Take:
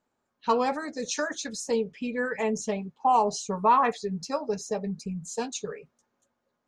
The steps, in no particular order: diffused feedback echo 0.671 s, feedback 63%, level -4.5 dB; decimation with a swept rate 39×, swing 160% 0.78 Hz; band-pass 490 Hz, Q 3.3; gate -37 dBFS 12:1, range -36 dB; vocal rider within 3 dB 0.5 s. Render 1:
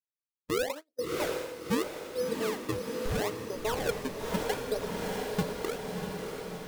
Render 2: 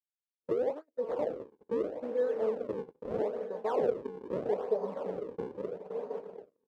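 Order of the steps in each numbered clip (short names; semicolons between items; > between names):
band-pass > decimation with a swept rate > gate > diffused feedback echo > vocal rider; vocal rider > diffused feedback echo > decimation with a swept rate > band-pass > gate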